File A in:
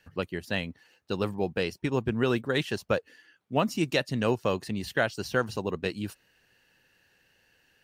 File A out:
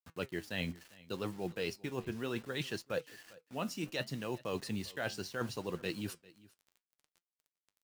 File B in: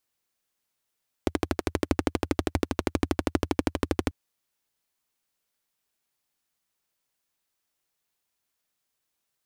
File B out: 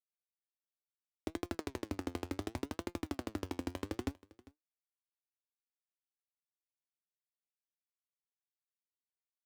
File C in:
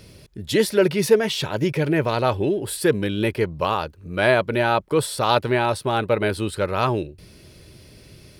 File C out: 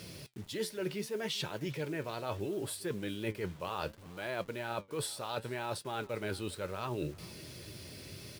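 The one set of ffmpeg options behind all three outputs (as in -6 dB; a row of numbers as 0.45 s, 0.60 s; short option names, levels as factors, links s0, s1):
-af "highpass=84,equalizer=f=5300:t=o:w=2.3:g=3,areverse,acompressor=threshold=0.0251:ratio=16,areverse,acrusher=bits=8:mix=0:aa=0.000001,flanger=delay=5.7:depth=5.8:regen=71:speed=0.69:shape=sinusoidal,aecho=1:1:399:0.0794,volume=1.41"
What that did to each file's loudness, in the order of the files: -10.0 LU, -12.0 LU, -17.0 LU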